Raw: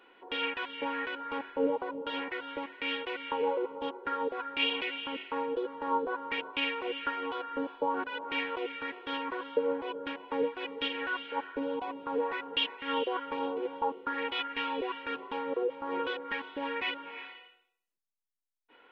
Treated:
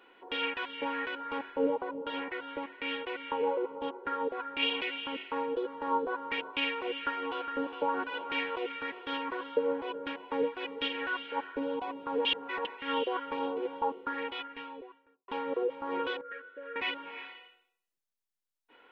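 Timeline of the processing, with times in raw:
1.74–4.63 s: treble shelf 4.5 kHz -9.5 dB
6.90–7.53 s: echo throw 410 ms, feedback 65%, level -9 dB
12.25–12.65 s: reverse
13.87–15.28 s: studio fade out
16.21–16.76 s: two resonant band-passes 870 Hz, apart 1.5 oct

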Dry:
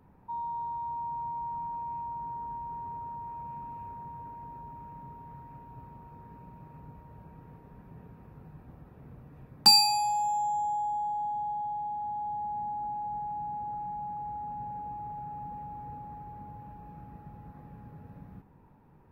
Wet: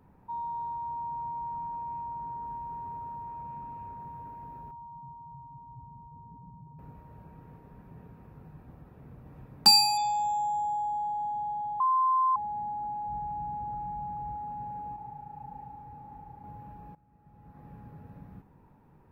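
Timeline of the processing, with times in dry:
0.74–2.44 s: treble shelf 4.2 kHz -6 dB
3.23–4.00 s: treble shelf 5 kHz -4 dB
4.71–6.79 s: spectral contrast enhancement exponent 2
8.68–9.30 s: echo throw 570 ms, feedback 30%, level -3.5 dB
9.97–11.20 s: careless resampling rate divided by 3×, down none, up filtered
11.80–12.36 s: bleep 1.04 kHz -21.5 dBFS
13.08–14.35 s: bass shelf 100 Hz +12 dB
14.96–16.44 s: detune thickener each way 56 cents
16.95–17.69 s: fade in quadratic, from -19 dB

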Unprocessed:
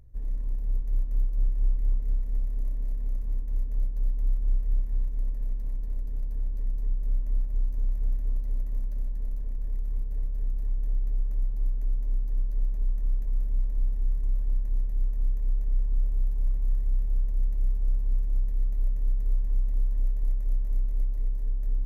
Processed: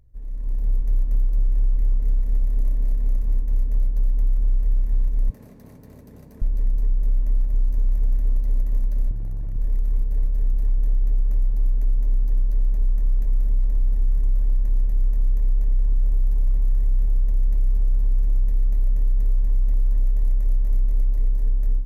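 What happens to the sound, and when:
5.30–6.42 s: high-pass 100 Hz 24 dB/octave
9.11–9.56 s: hard clipper -32.5 dBFS
whole clip: peak limiter -21.5 dBFS; level rider gain up to 12 dB; trim -3.5 dB

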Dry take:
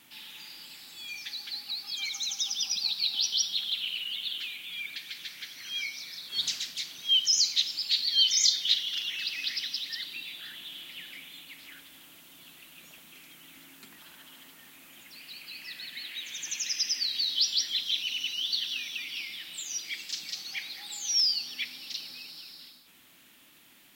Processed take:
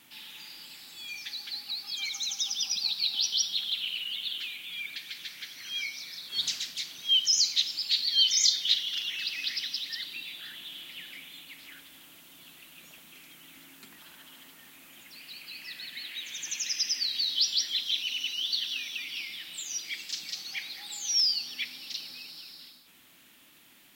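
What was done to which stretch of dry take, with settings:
17.58–19.03 s: high-pass 150 Hz

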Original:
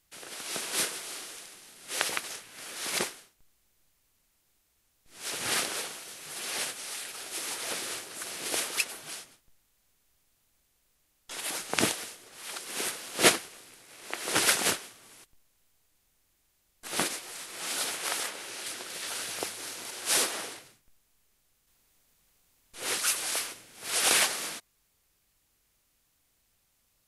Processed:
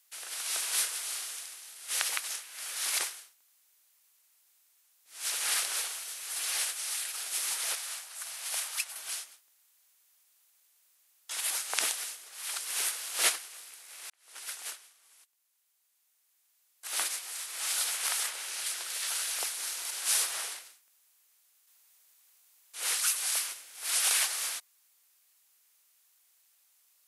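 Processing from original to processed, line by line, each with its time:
7.75–8.96 s: ladder high-pass 510 Hz, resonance 25%
14.10–17.84 s: fade in
whole clip: high-pass 850 Hz 12 dB/octave; treble shelf 5.8 kHz +7.5 dB; compression 2:1, threshold -29 dBFS

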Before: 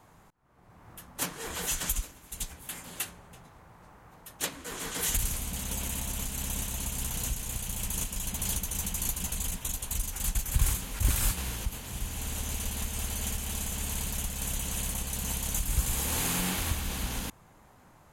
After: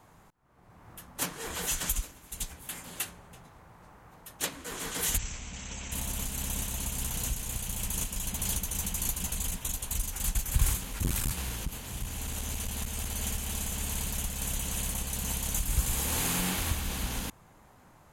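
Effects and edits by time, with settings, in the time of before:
5.18–5.92 s: rippled Chebyshev low-pass 7.8 kHz, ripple 6 dB
10.78–13.15 s: transformer saturation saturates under 240 Hz

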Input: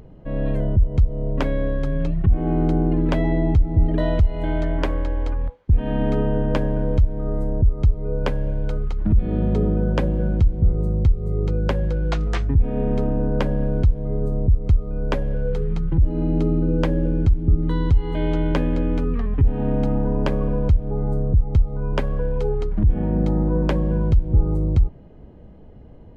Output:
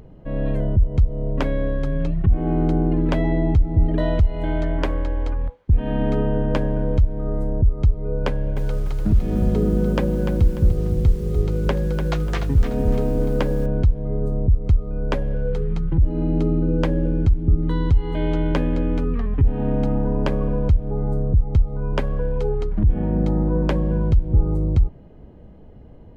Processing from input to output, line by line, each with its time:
8.27–13.66 s: bit-crushed delay 295 ms, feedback 35%, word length 7-bit, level -7.5 dB

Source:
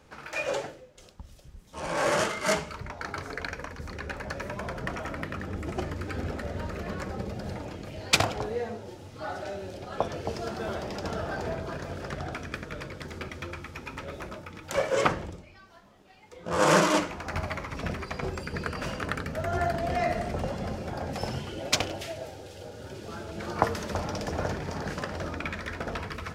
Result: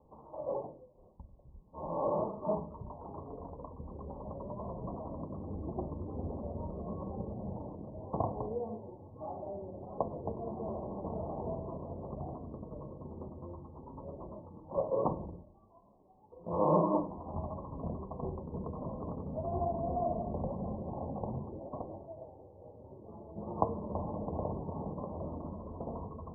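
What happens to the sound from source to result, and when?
21.57–23.36 s: gain -4 dB
whole clip: Chebyshev low-pass 1.1 kHz, order 8; dynamic bell 200 Hz, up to +3 dB, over -47 dBFS, Q 1.5; de-hum 48.4 Hz, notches 7; trim -5 dB

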